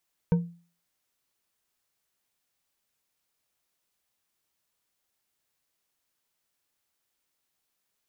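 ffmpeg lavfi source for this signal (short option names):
-f lavfi -i "aevalsrc='0.158*pow(10,-3*t/0.4)*sin(2*PI*171*t)+0.0562*pow(10,-3*t/0.197)*sin(2*PI*471.4*t)+0.02*pow(10,-3*t/0.123)*sin(2*PI*924.1*t)+0.00708*pow(10,-3*t/0.086)*sin(2*PI*1527.5*t)+0.00251*pow(10,-3*t/0.065)*sin(2*PI*2281.1*t)':d=0.89:s=44100"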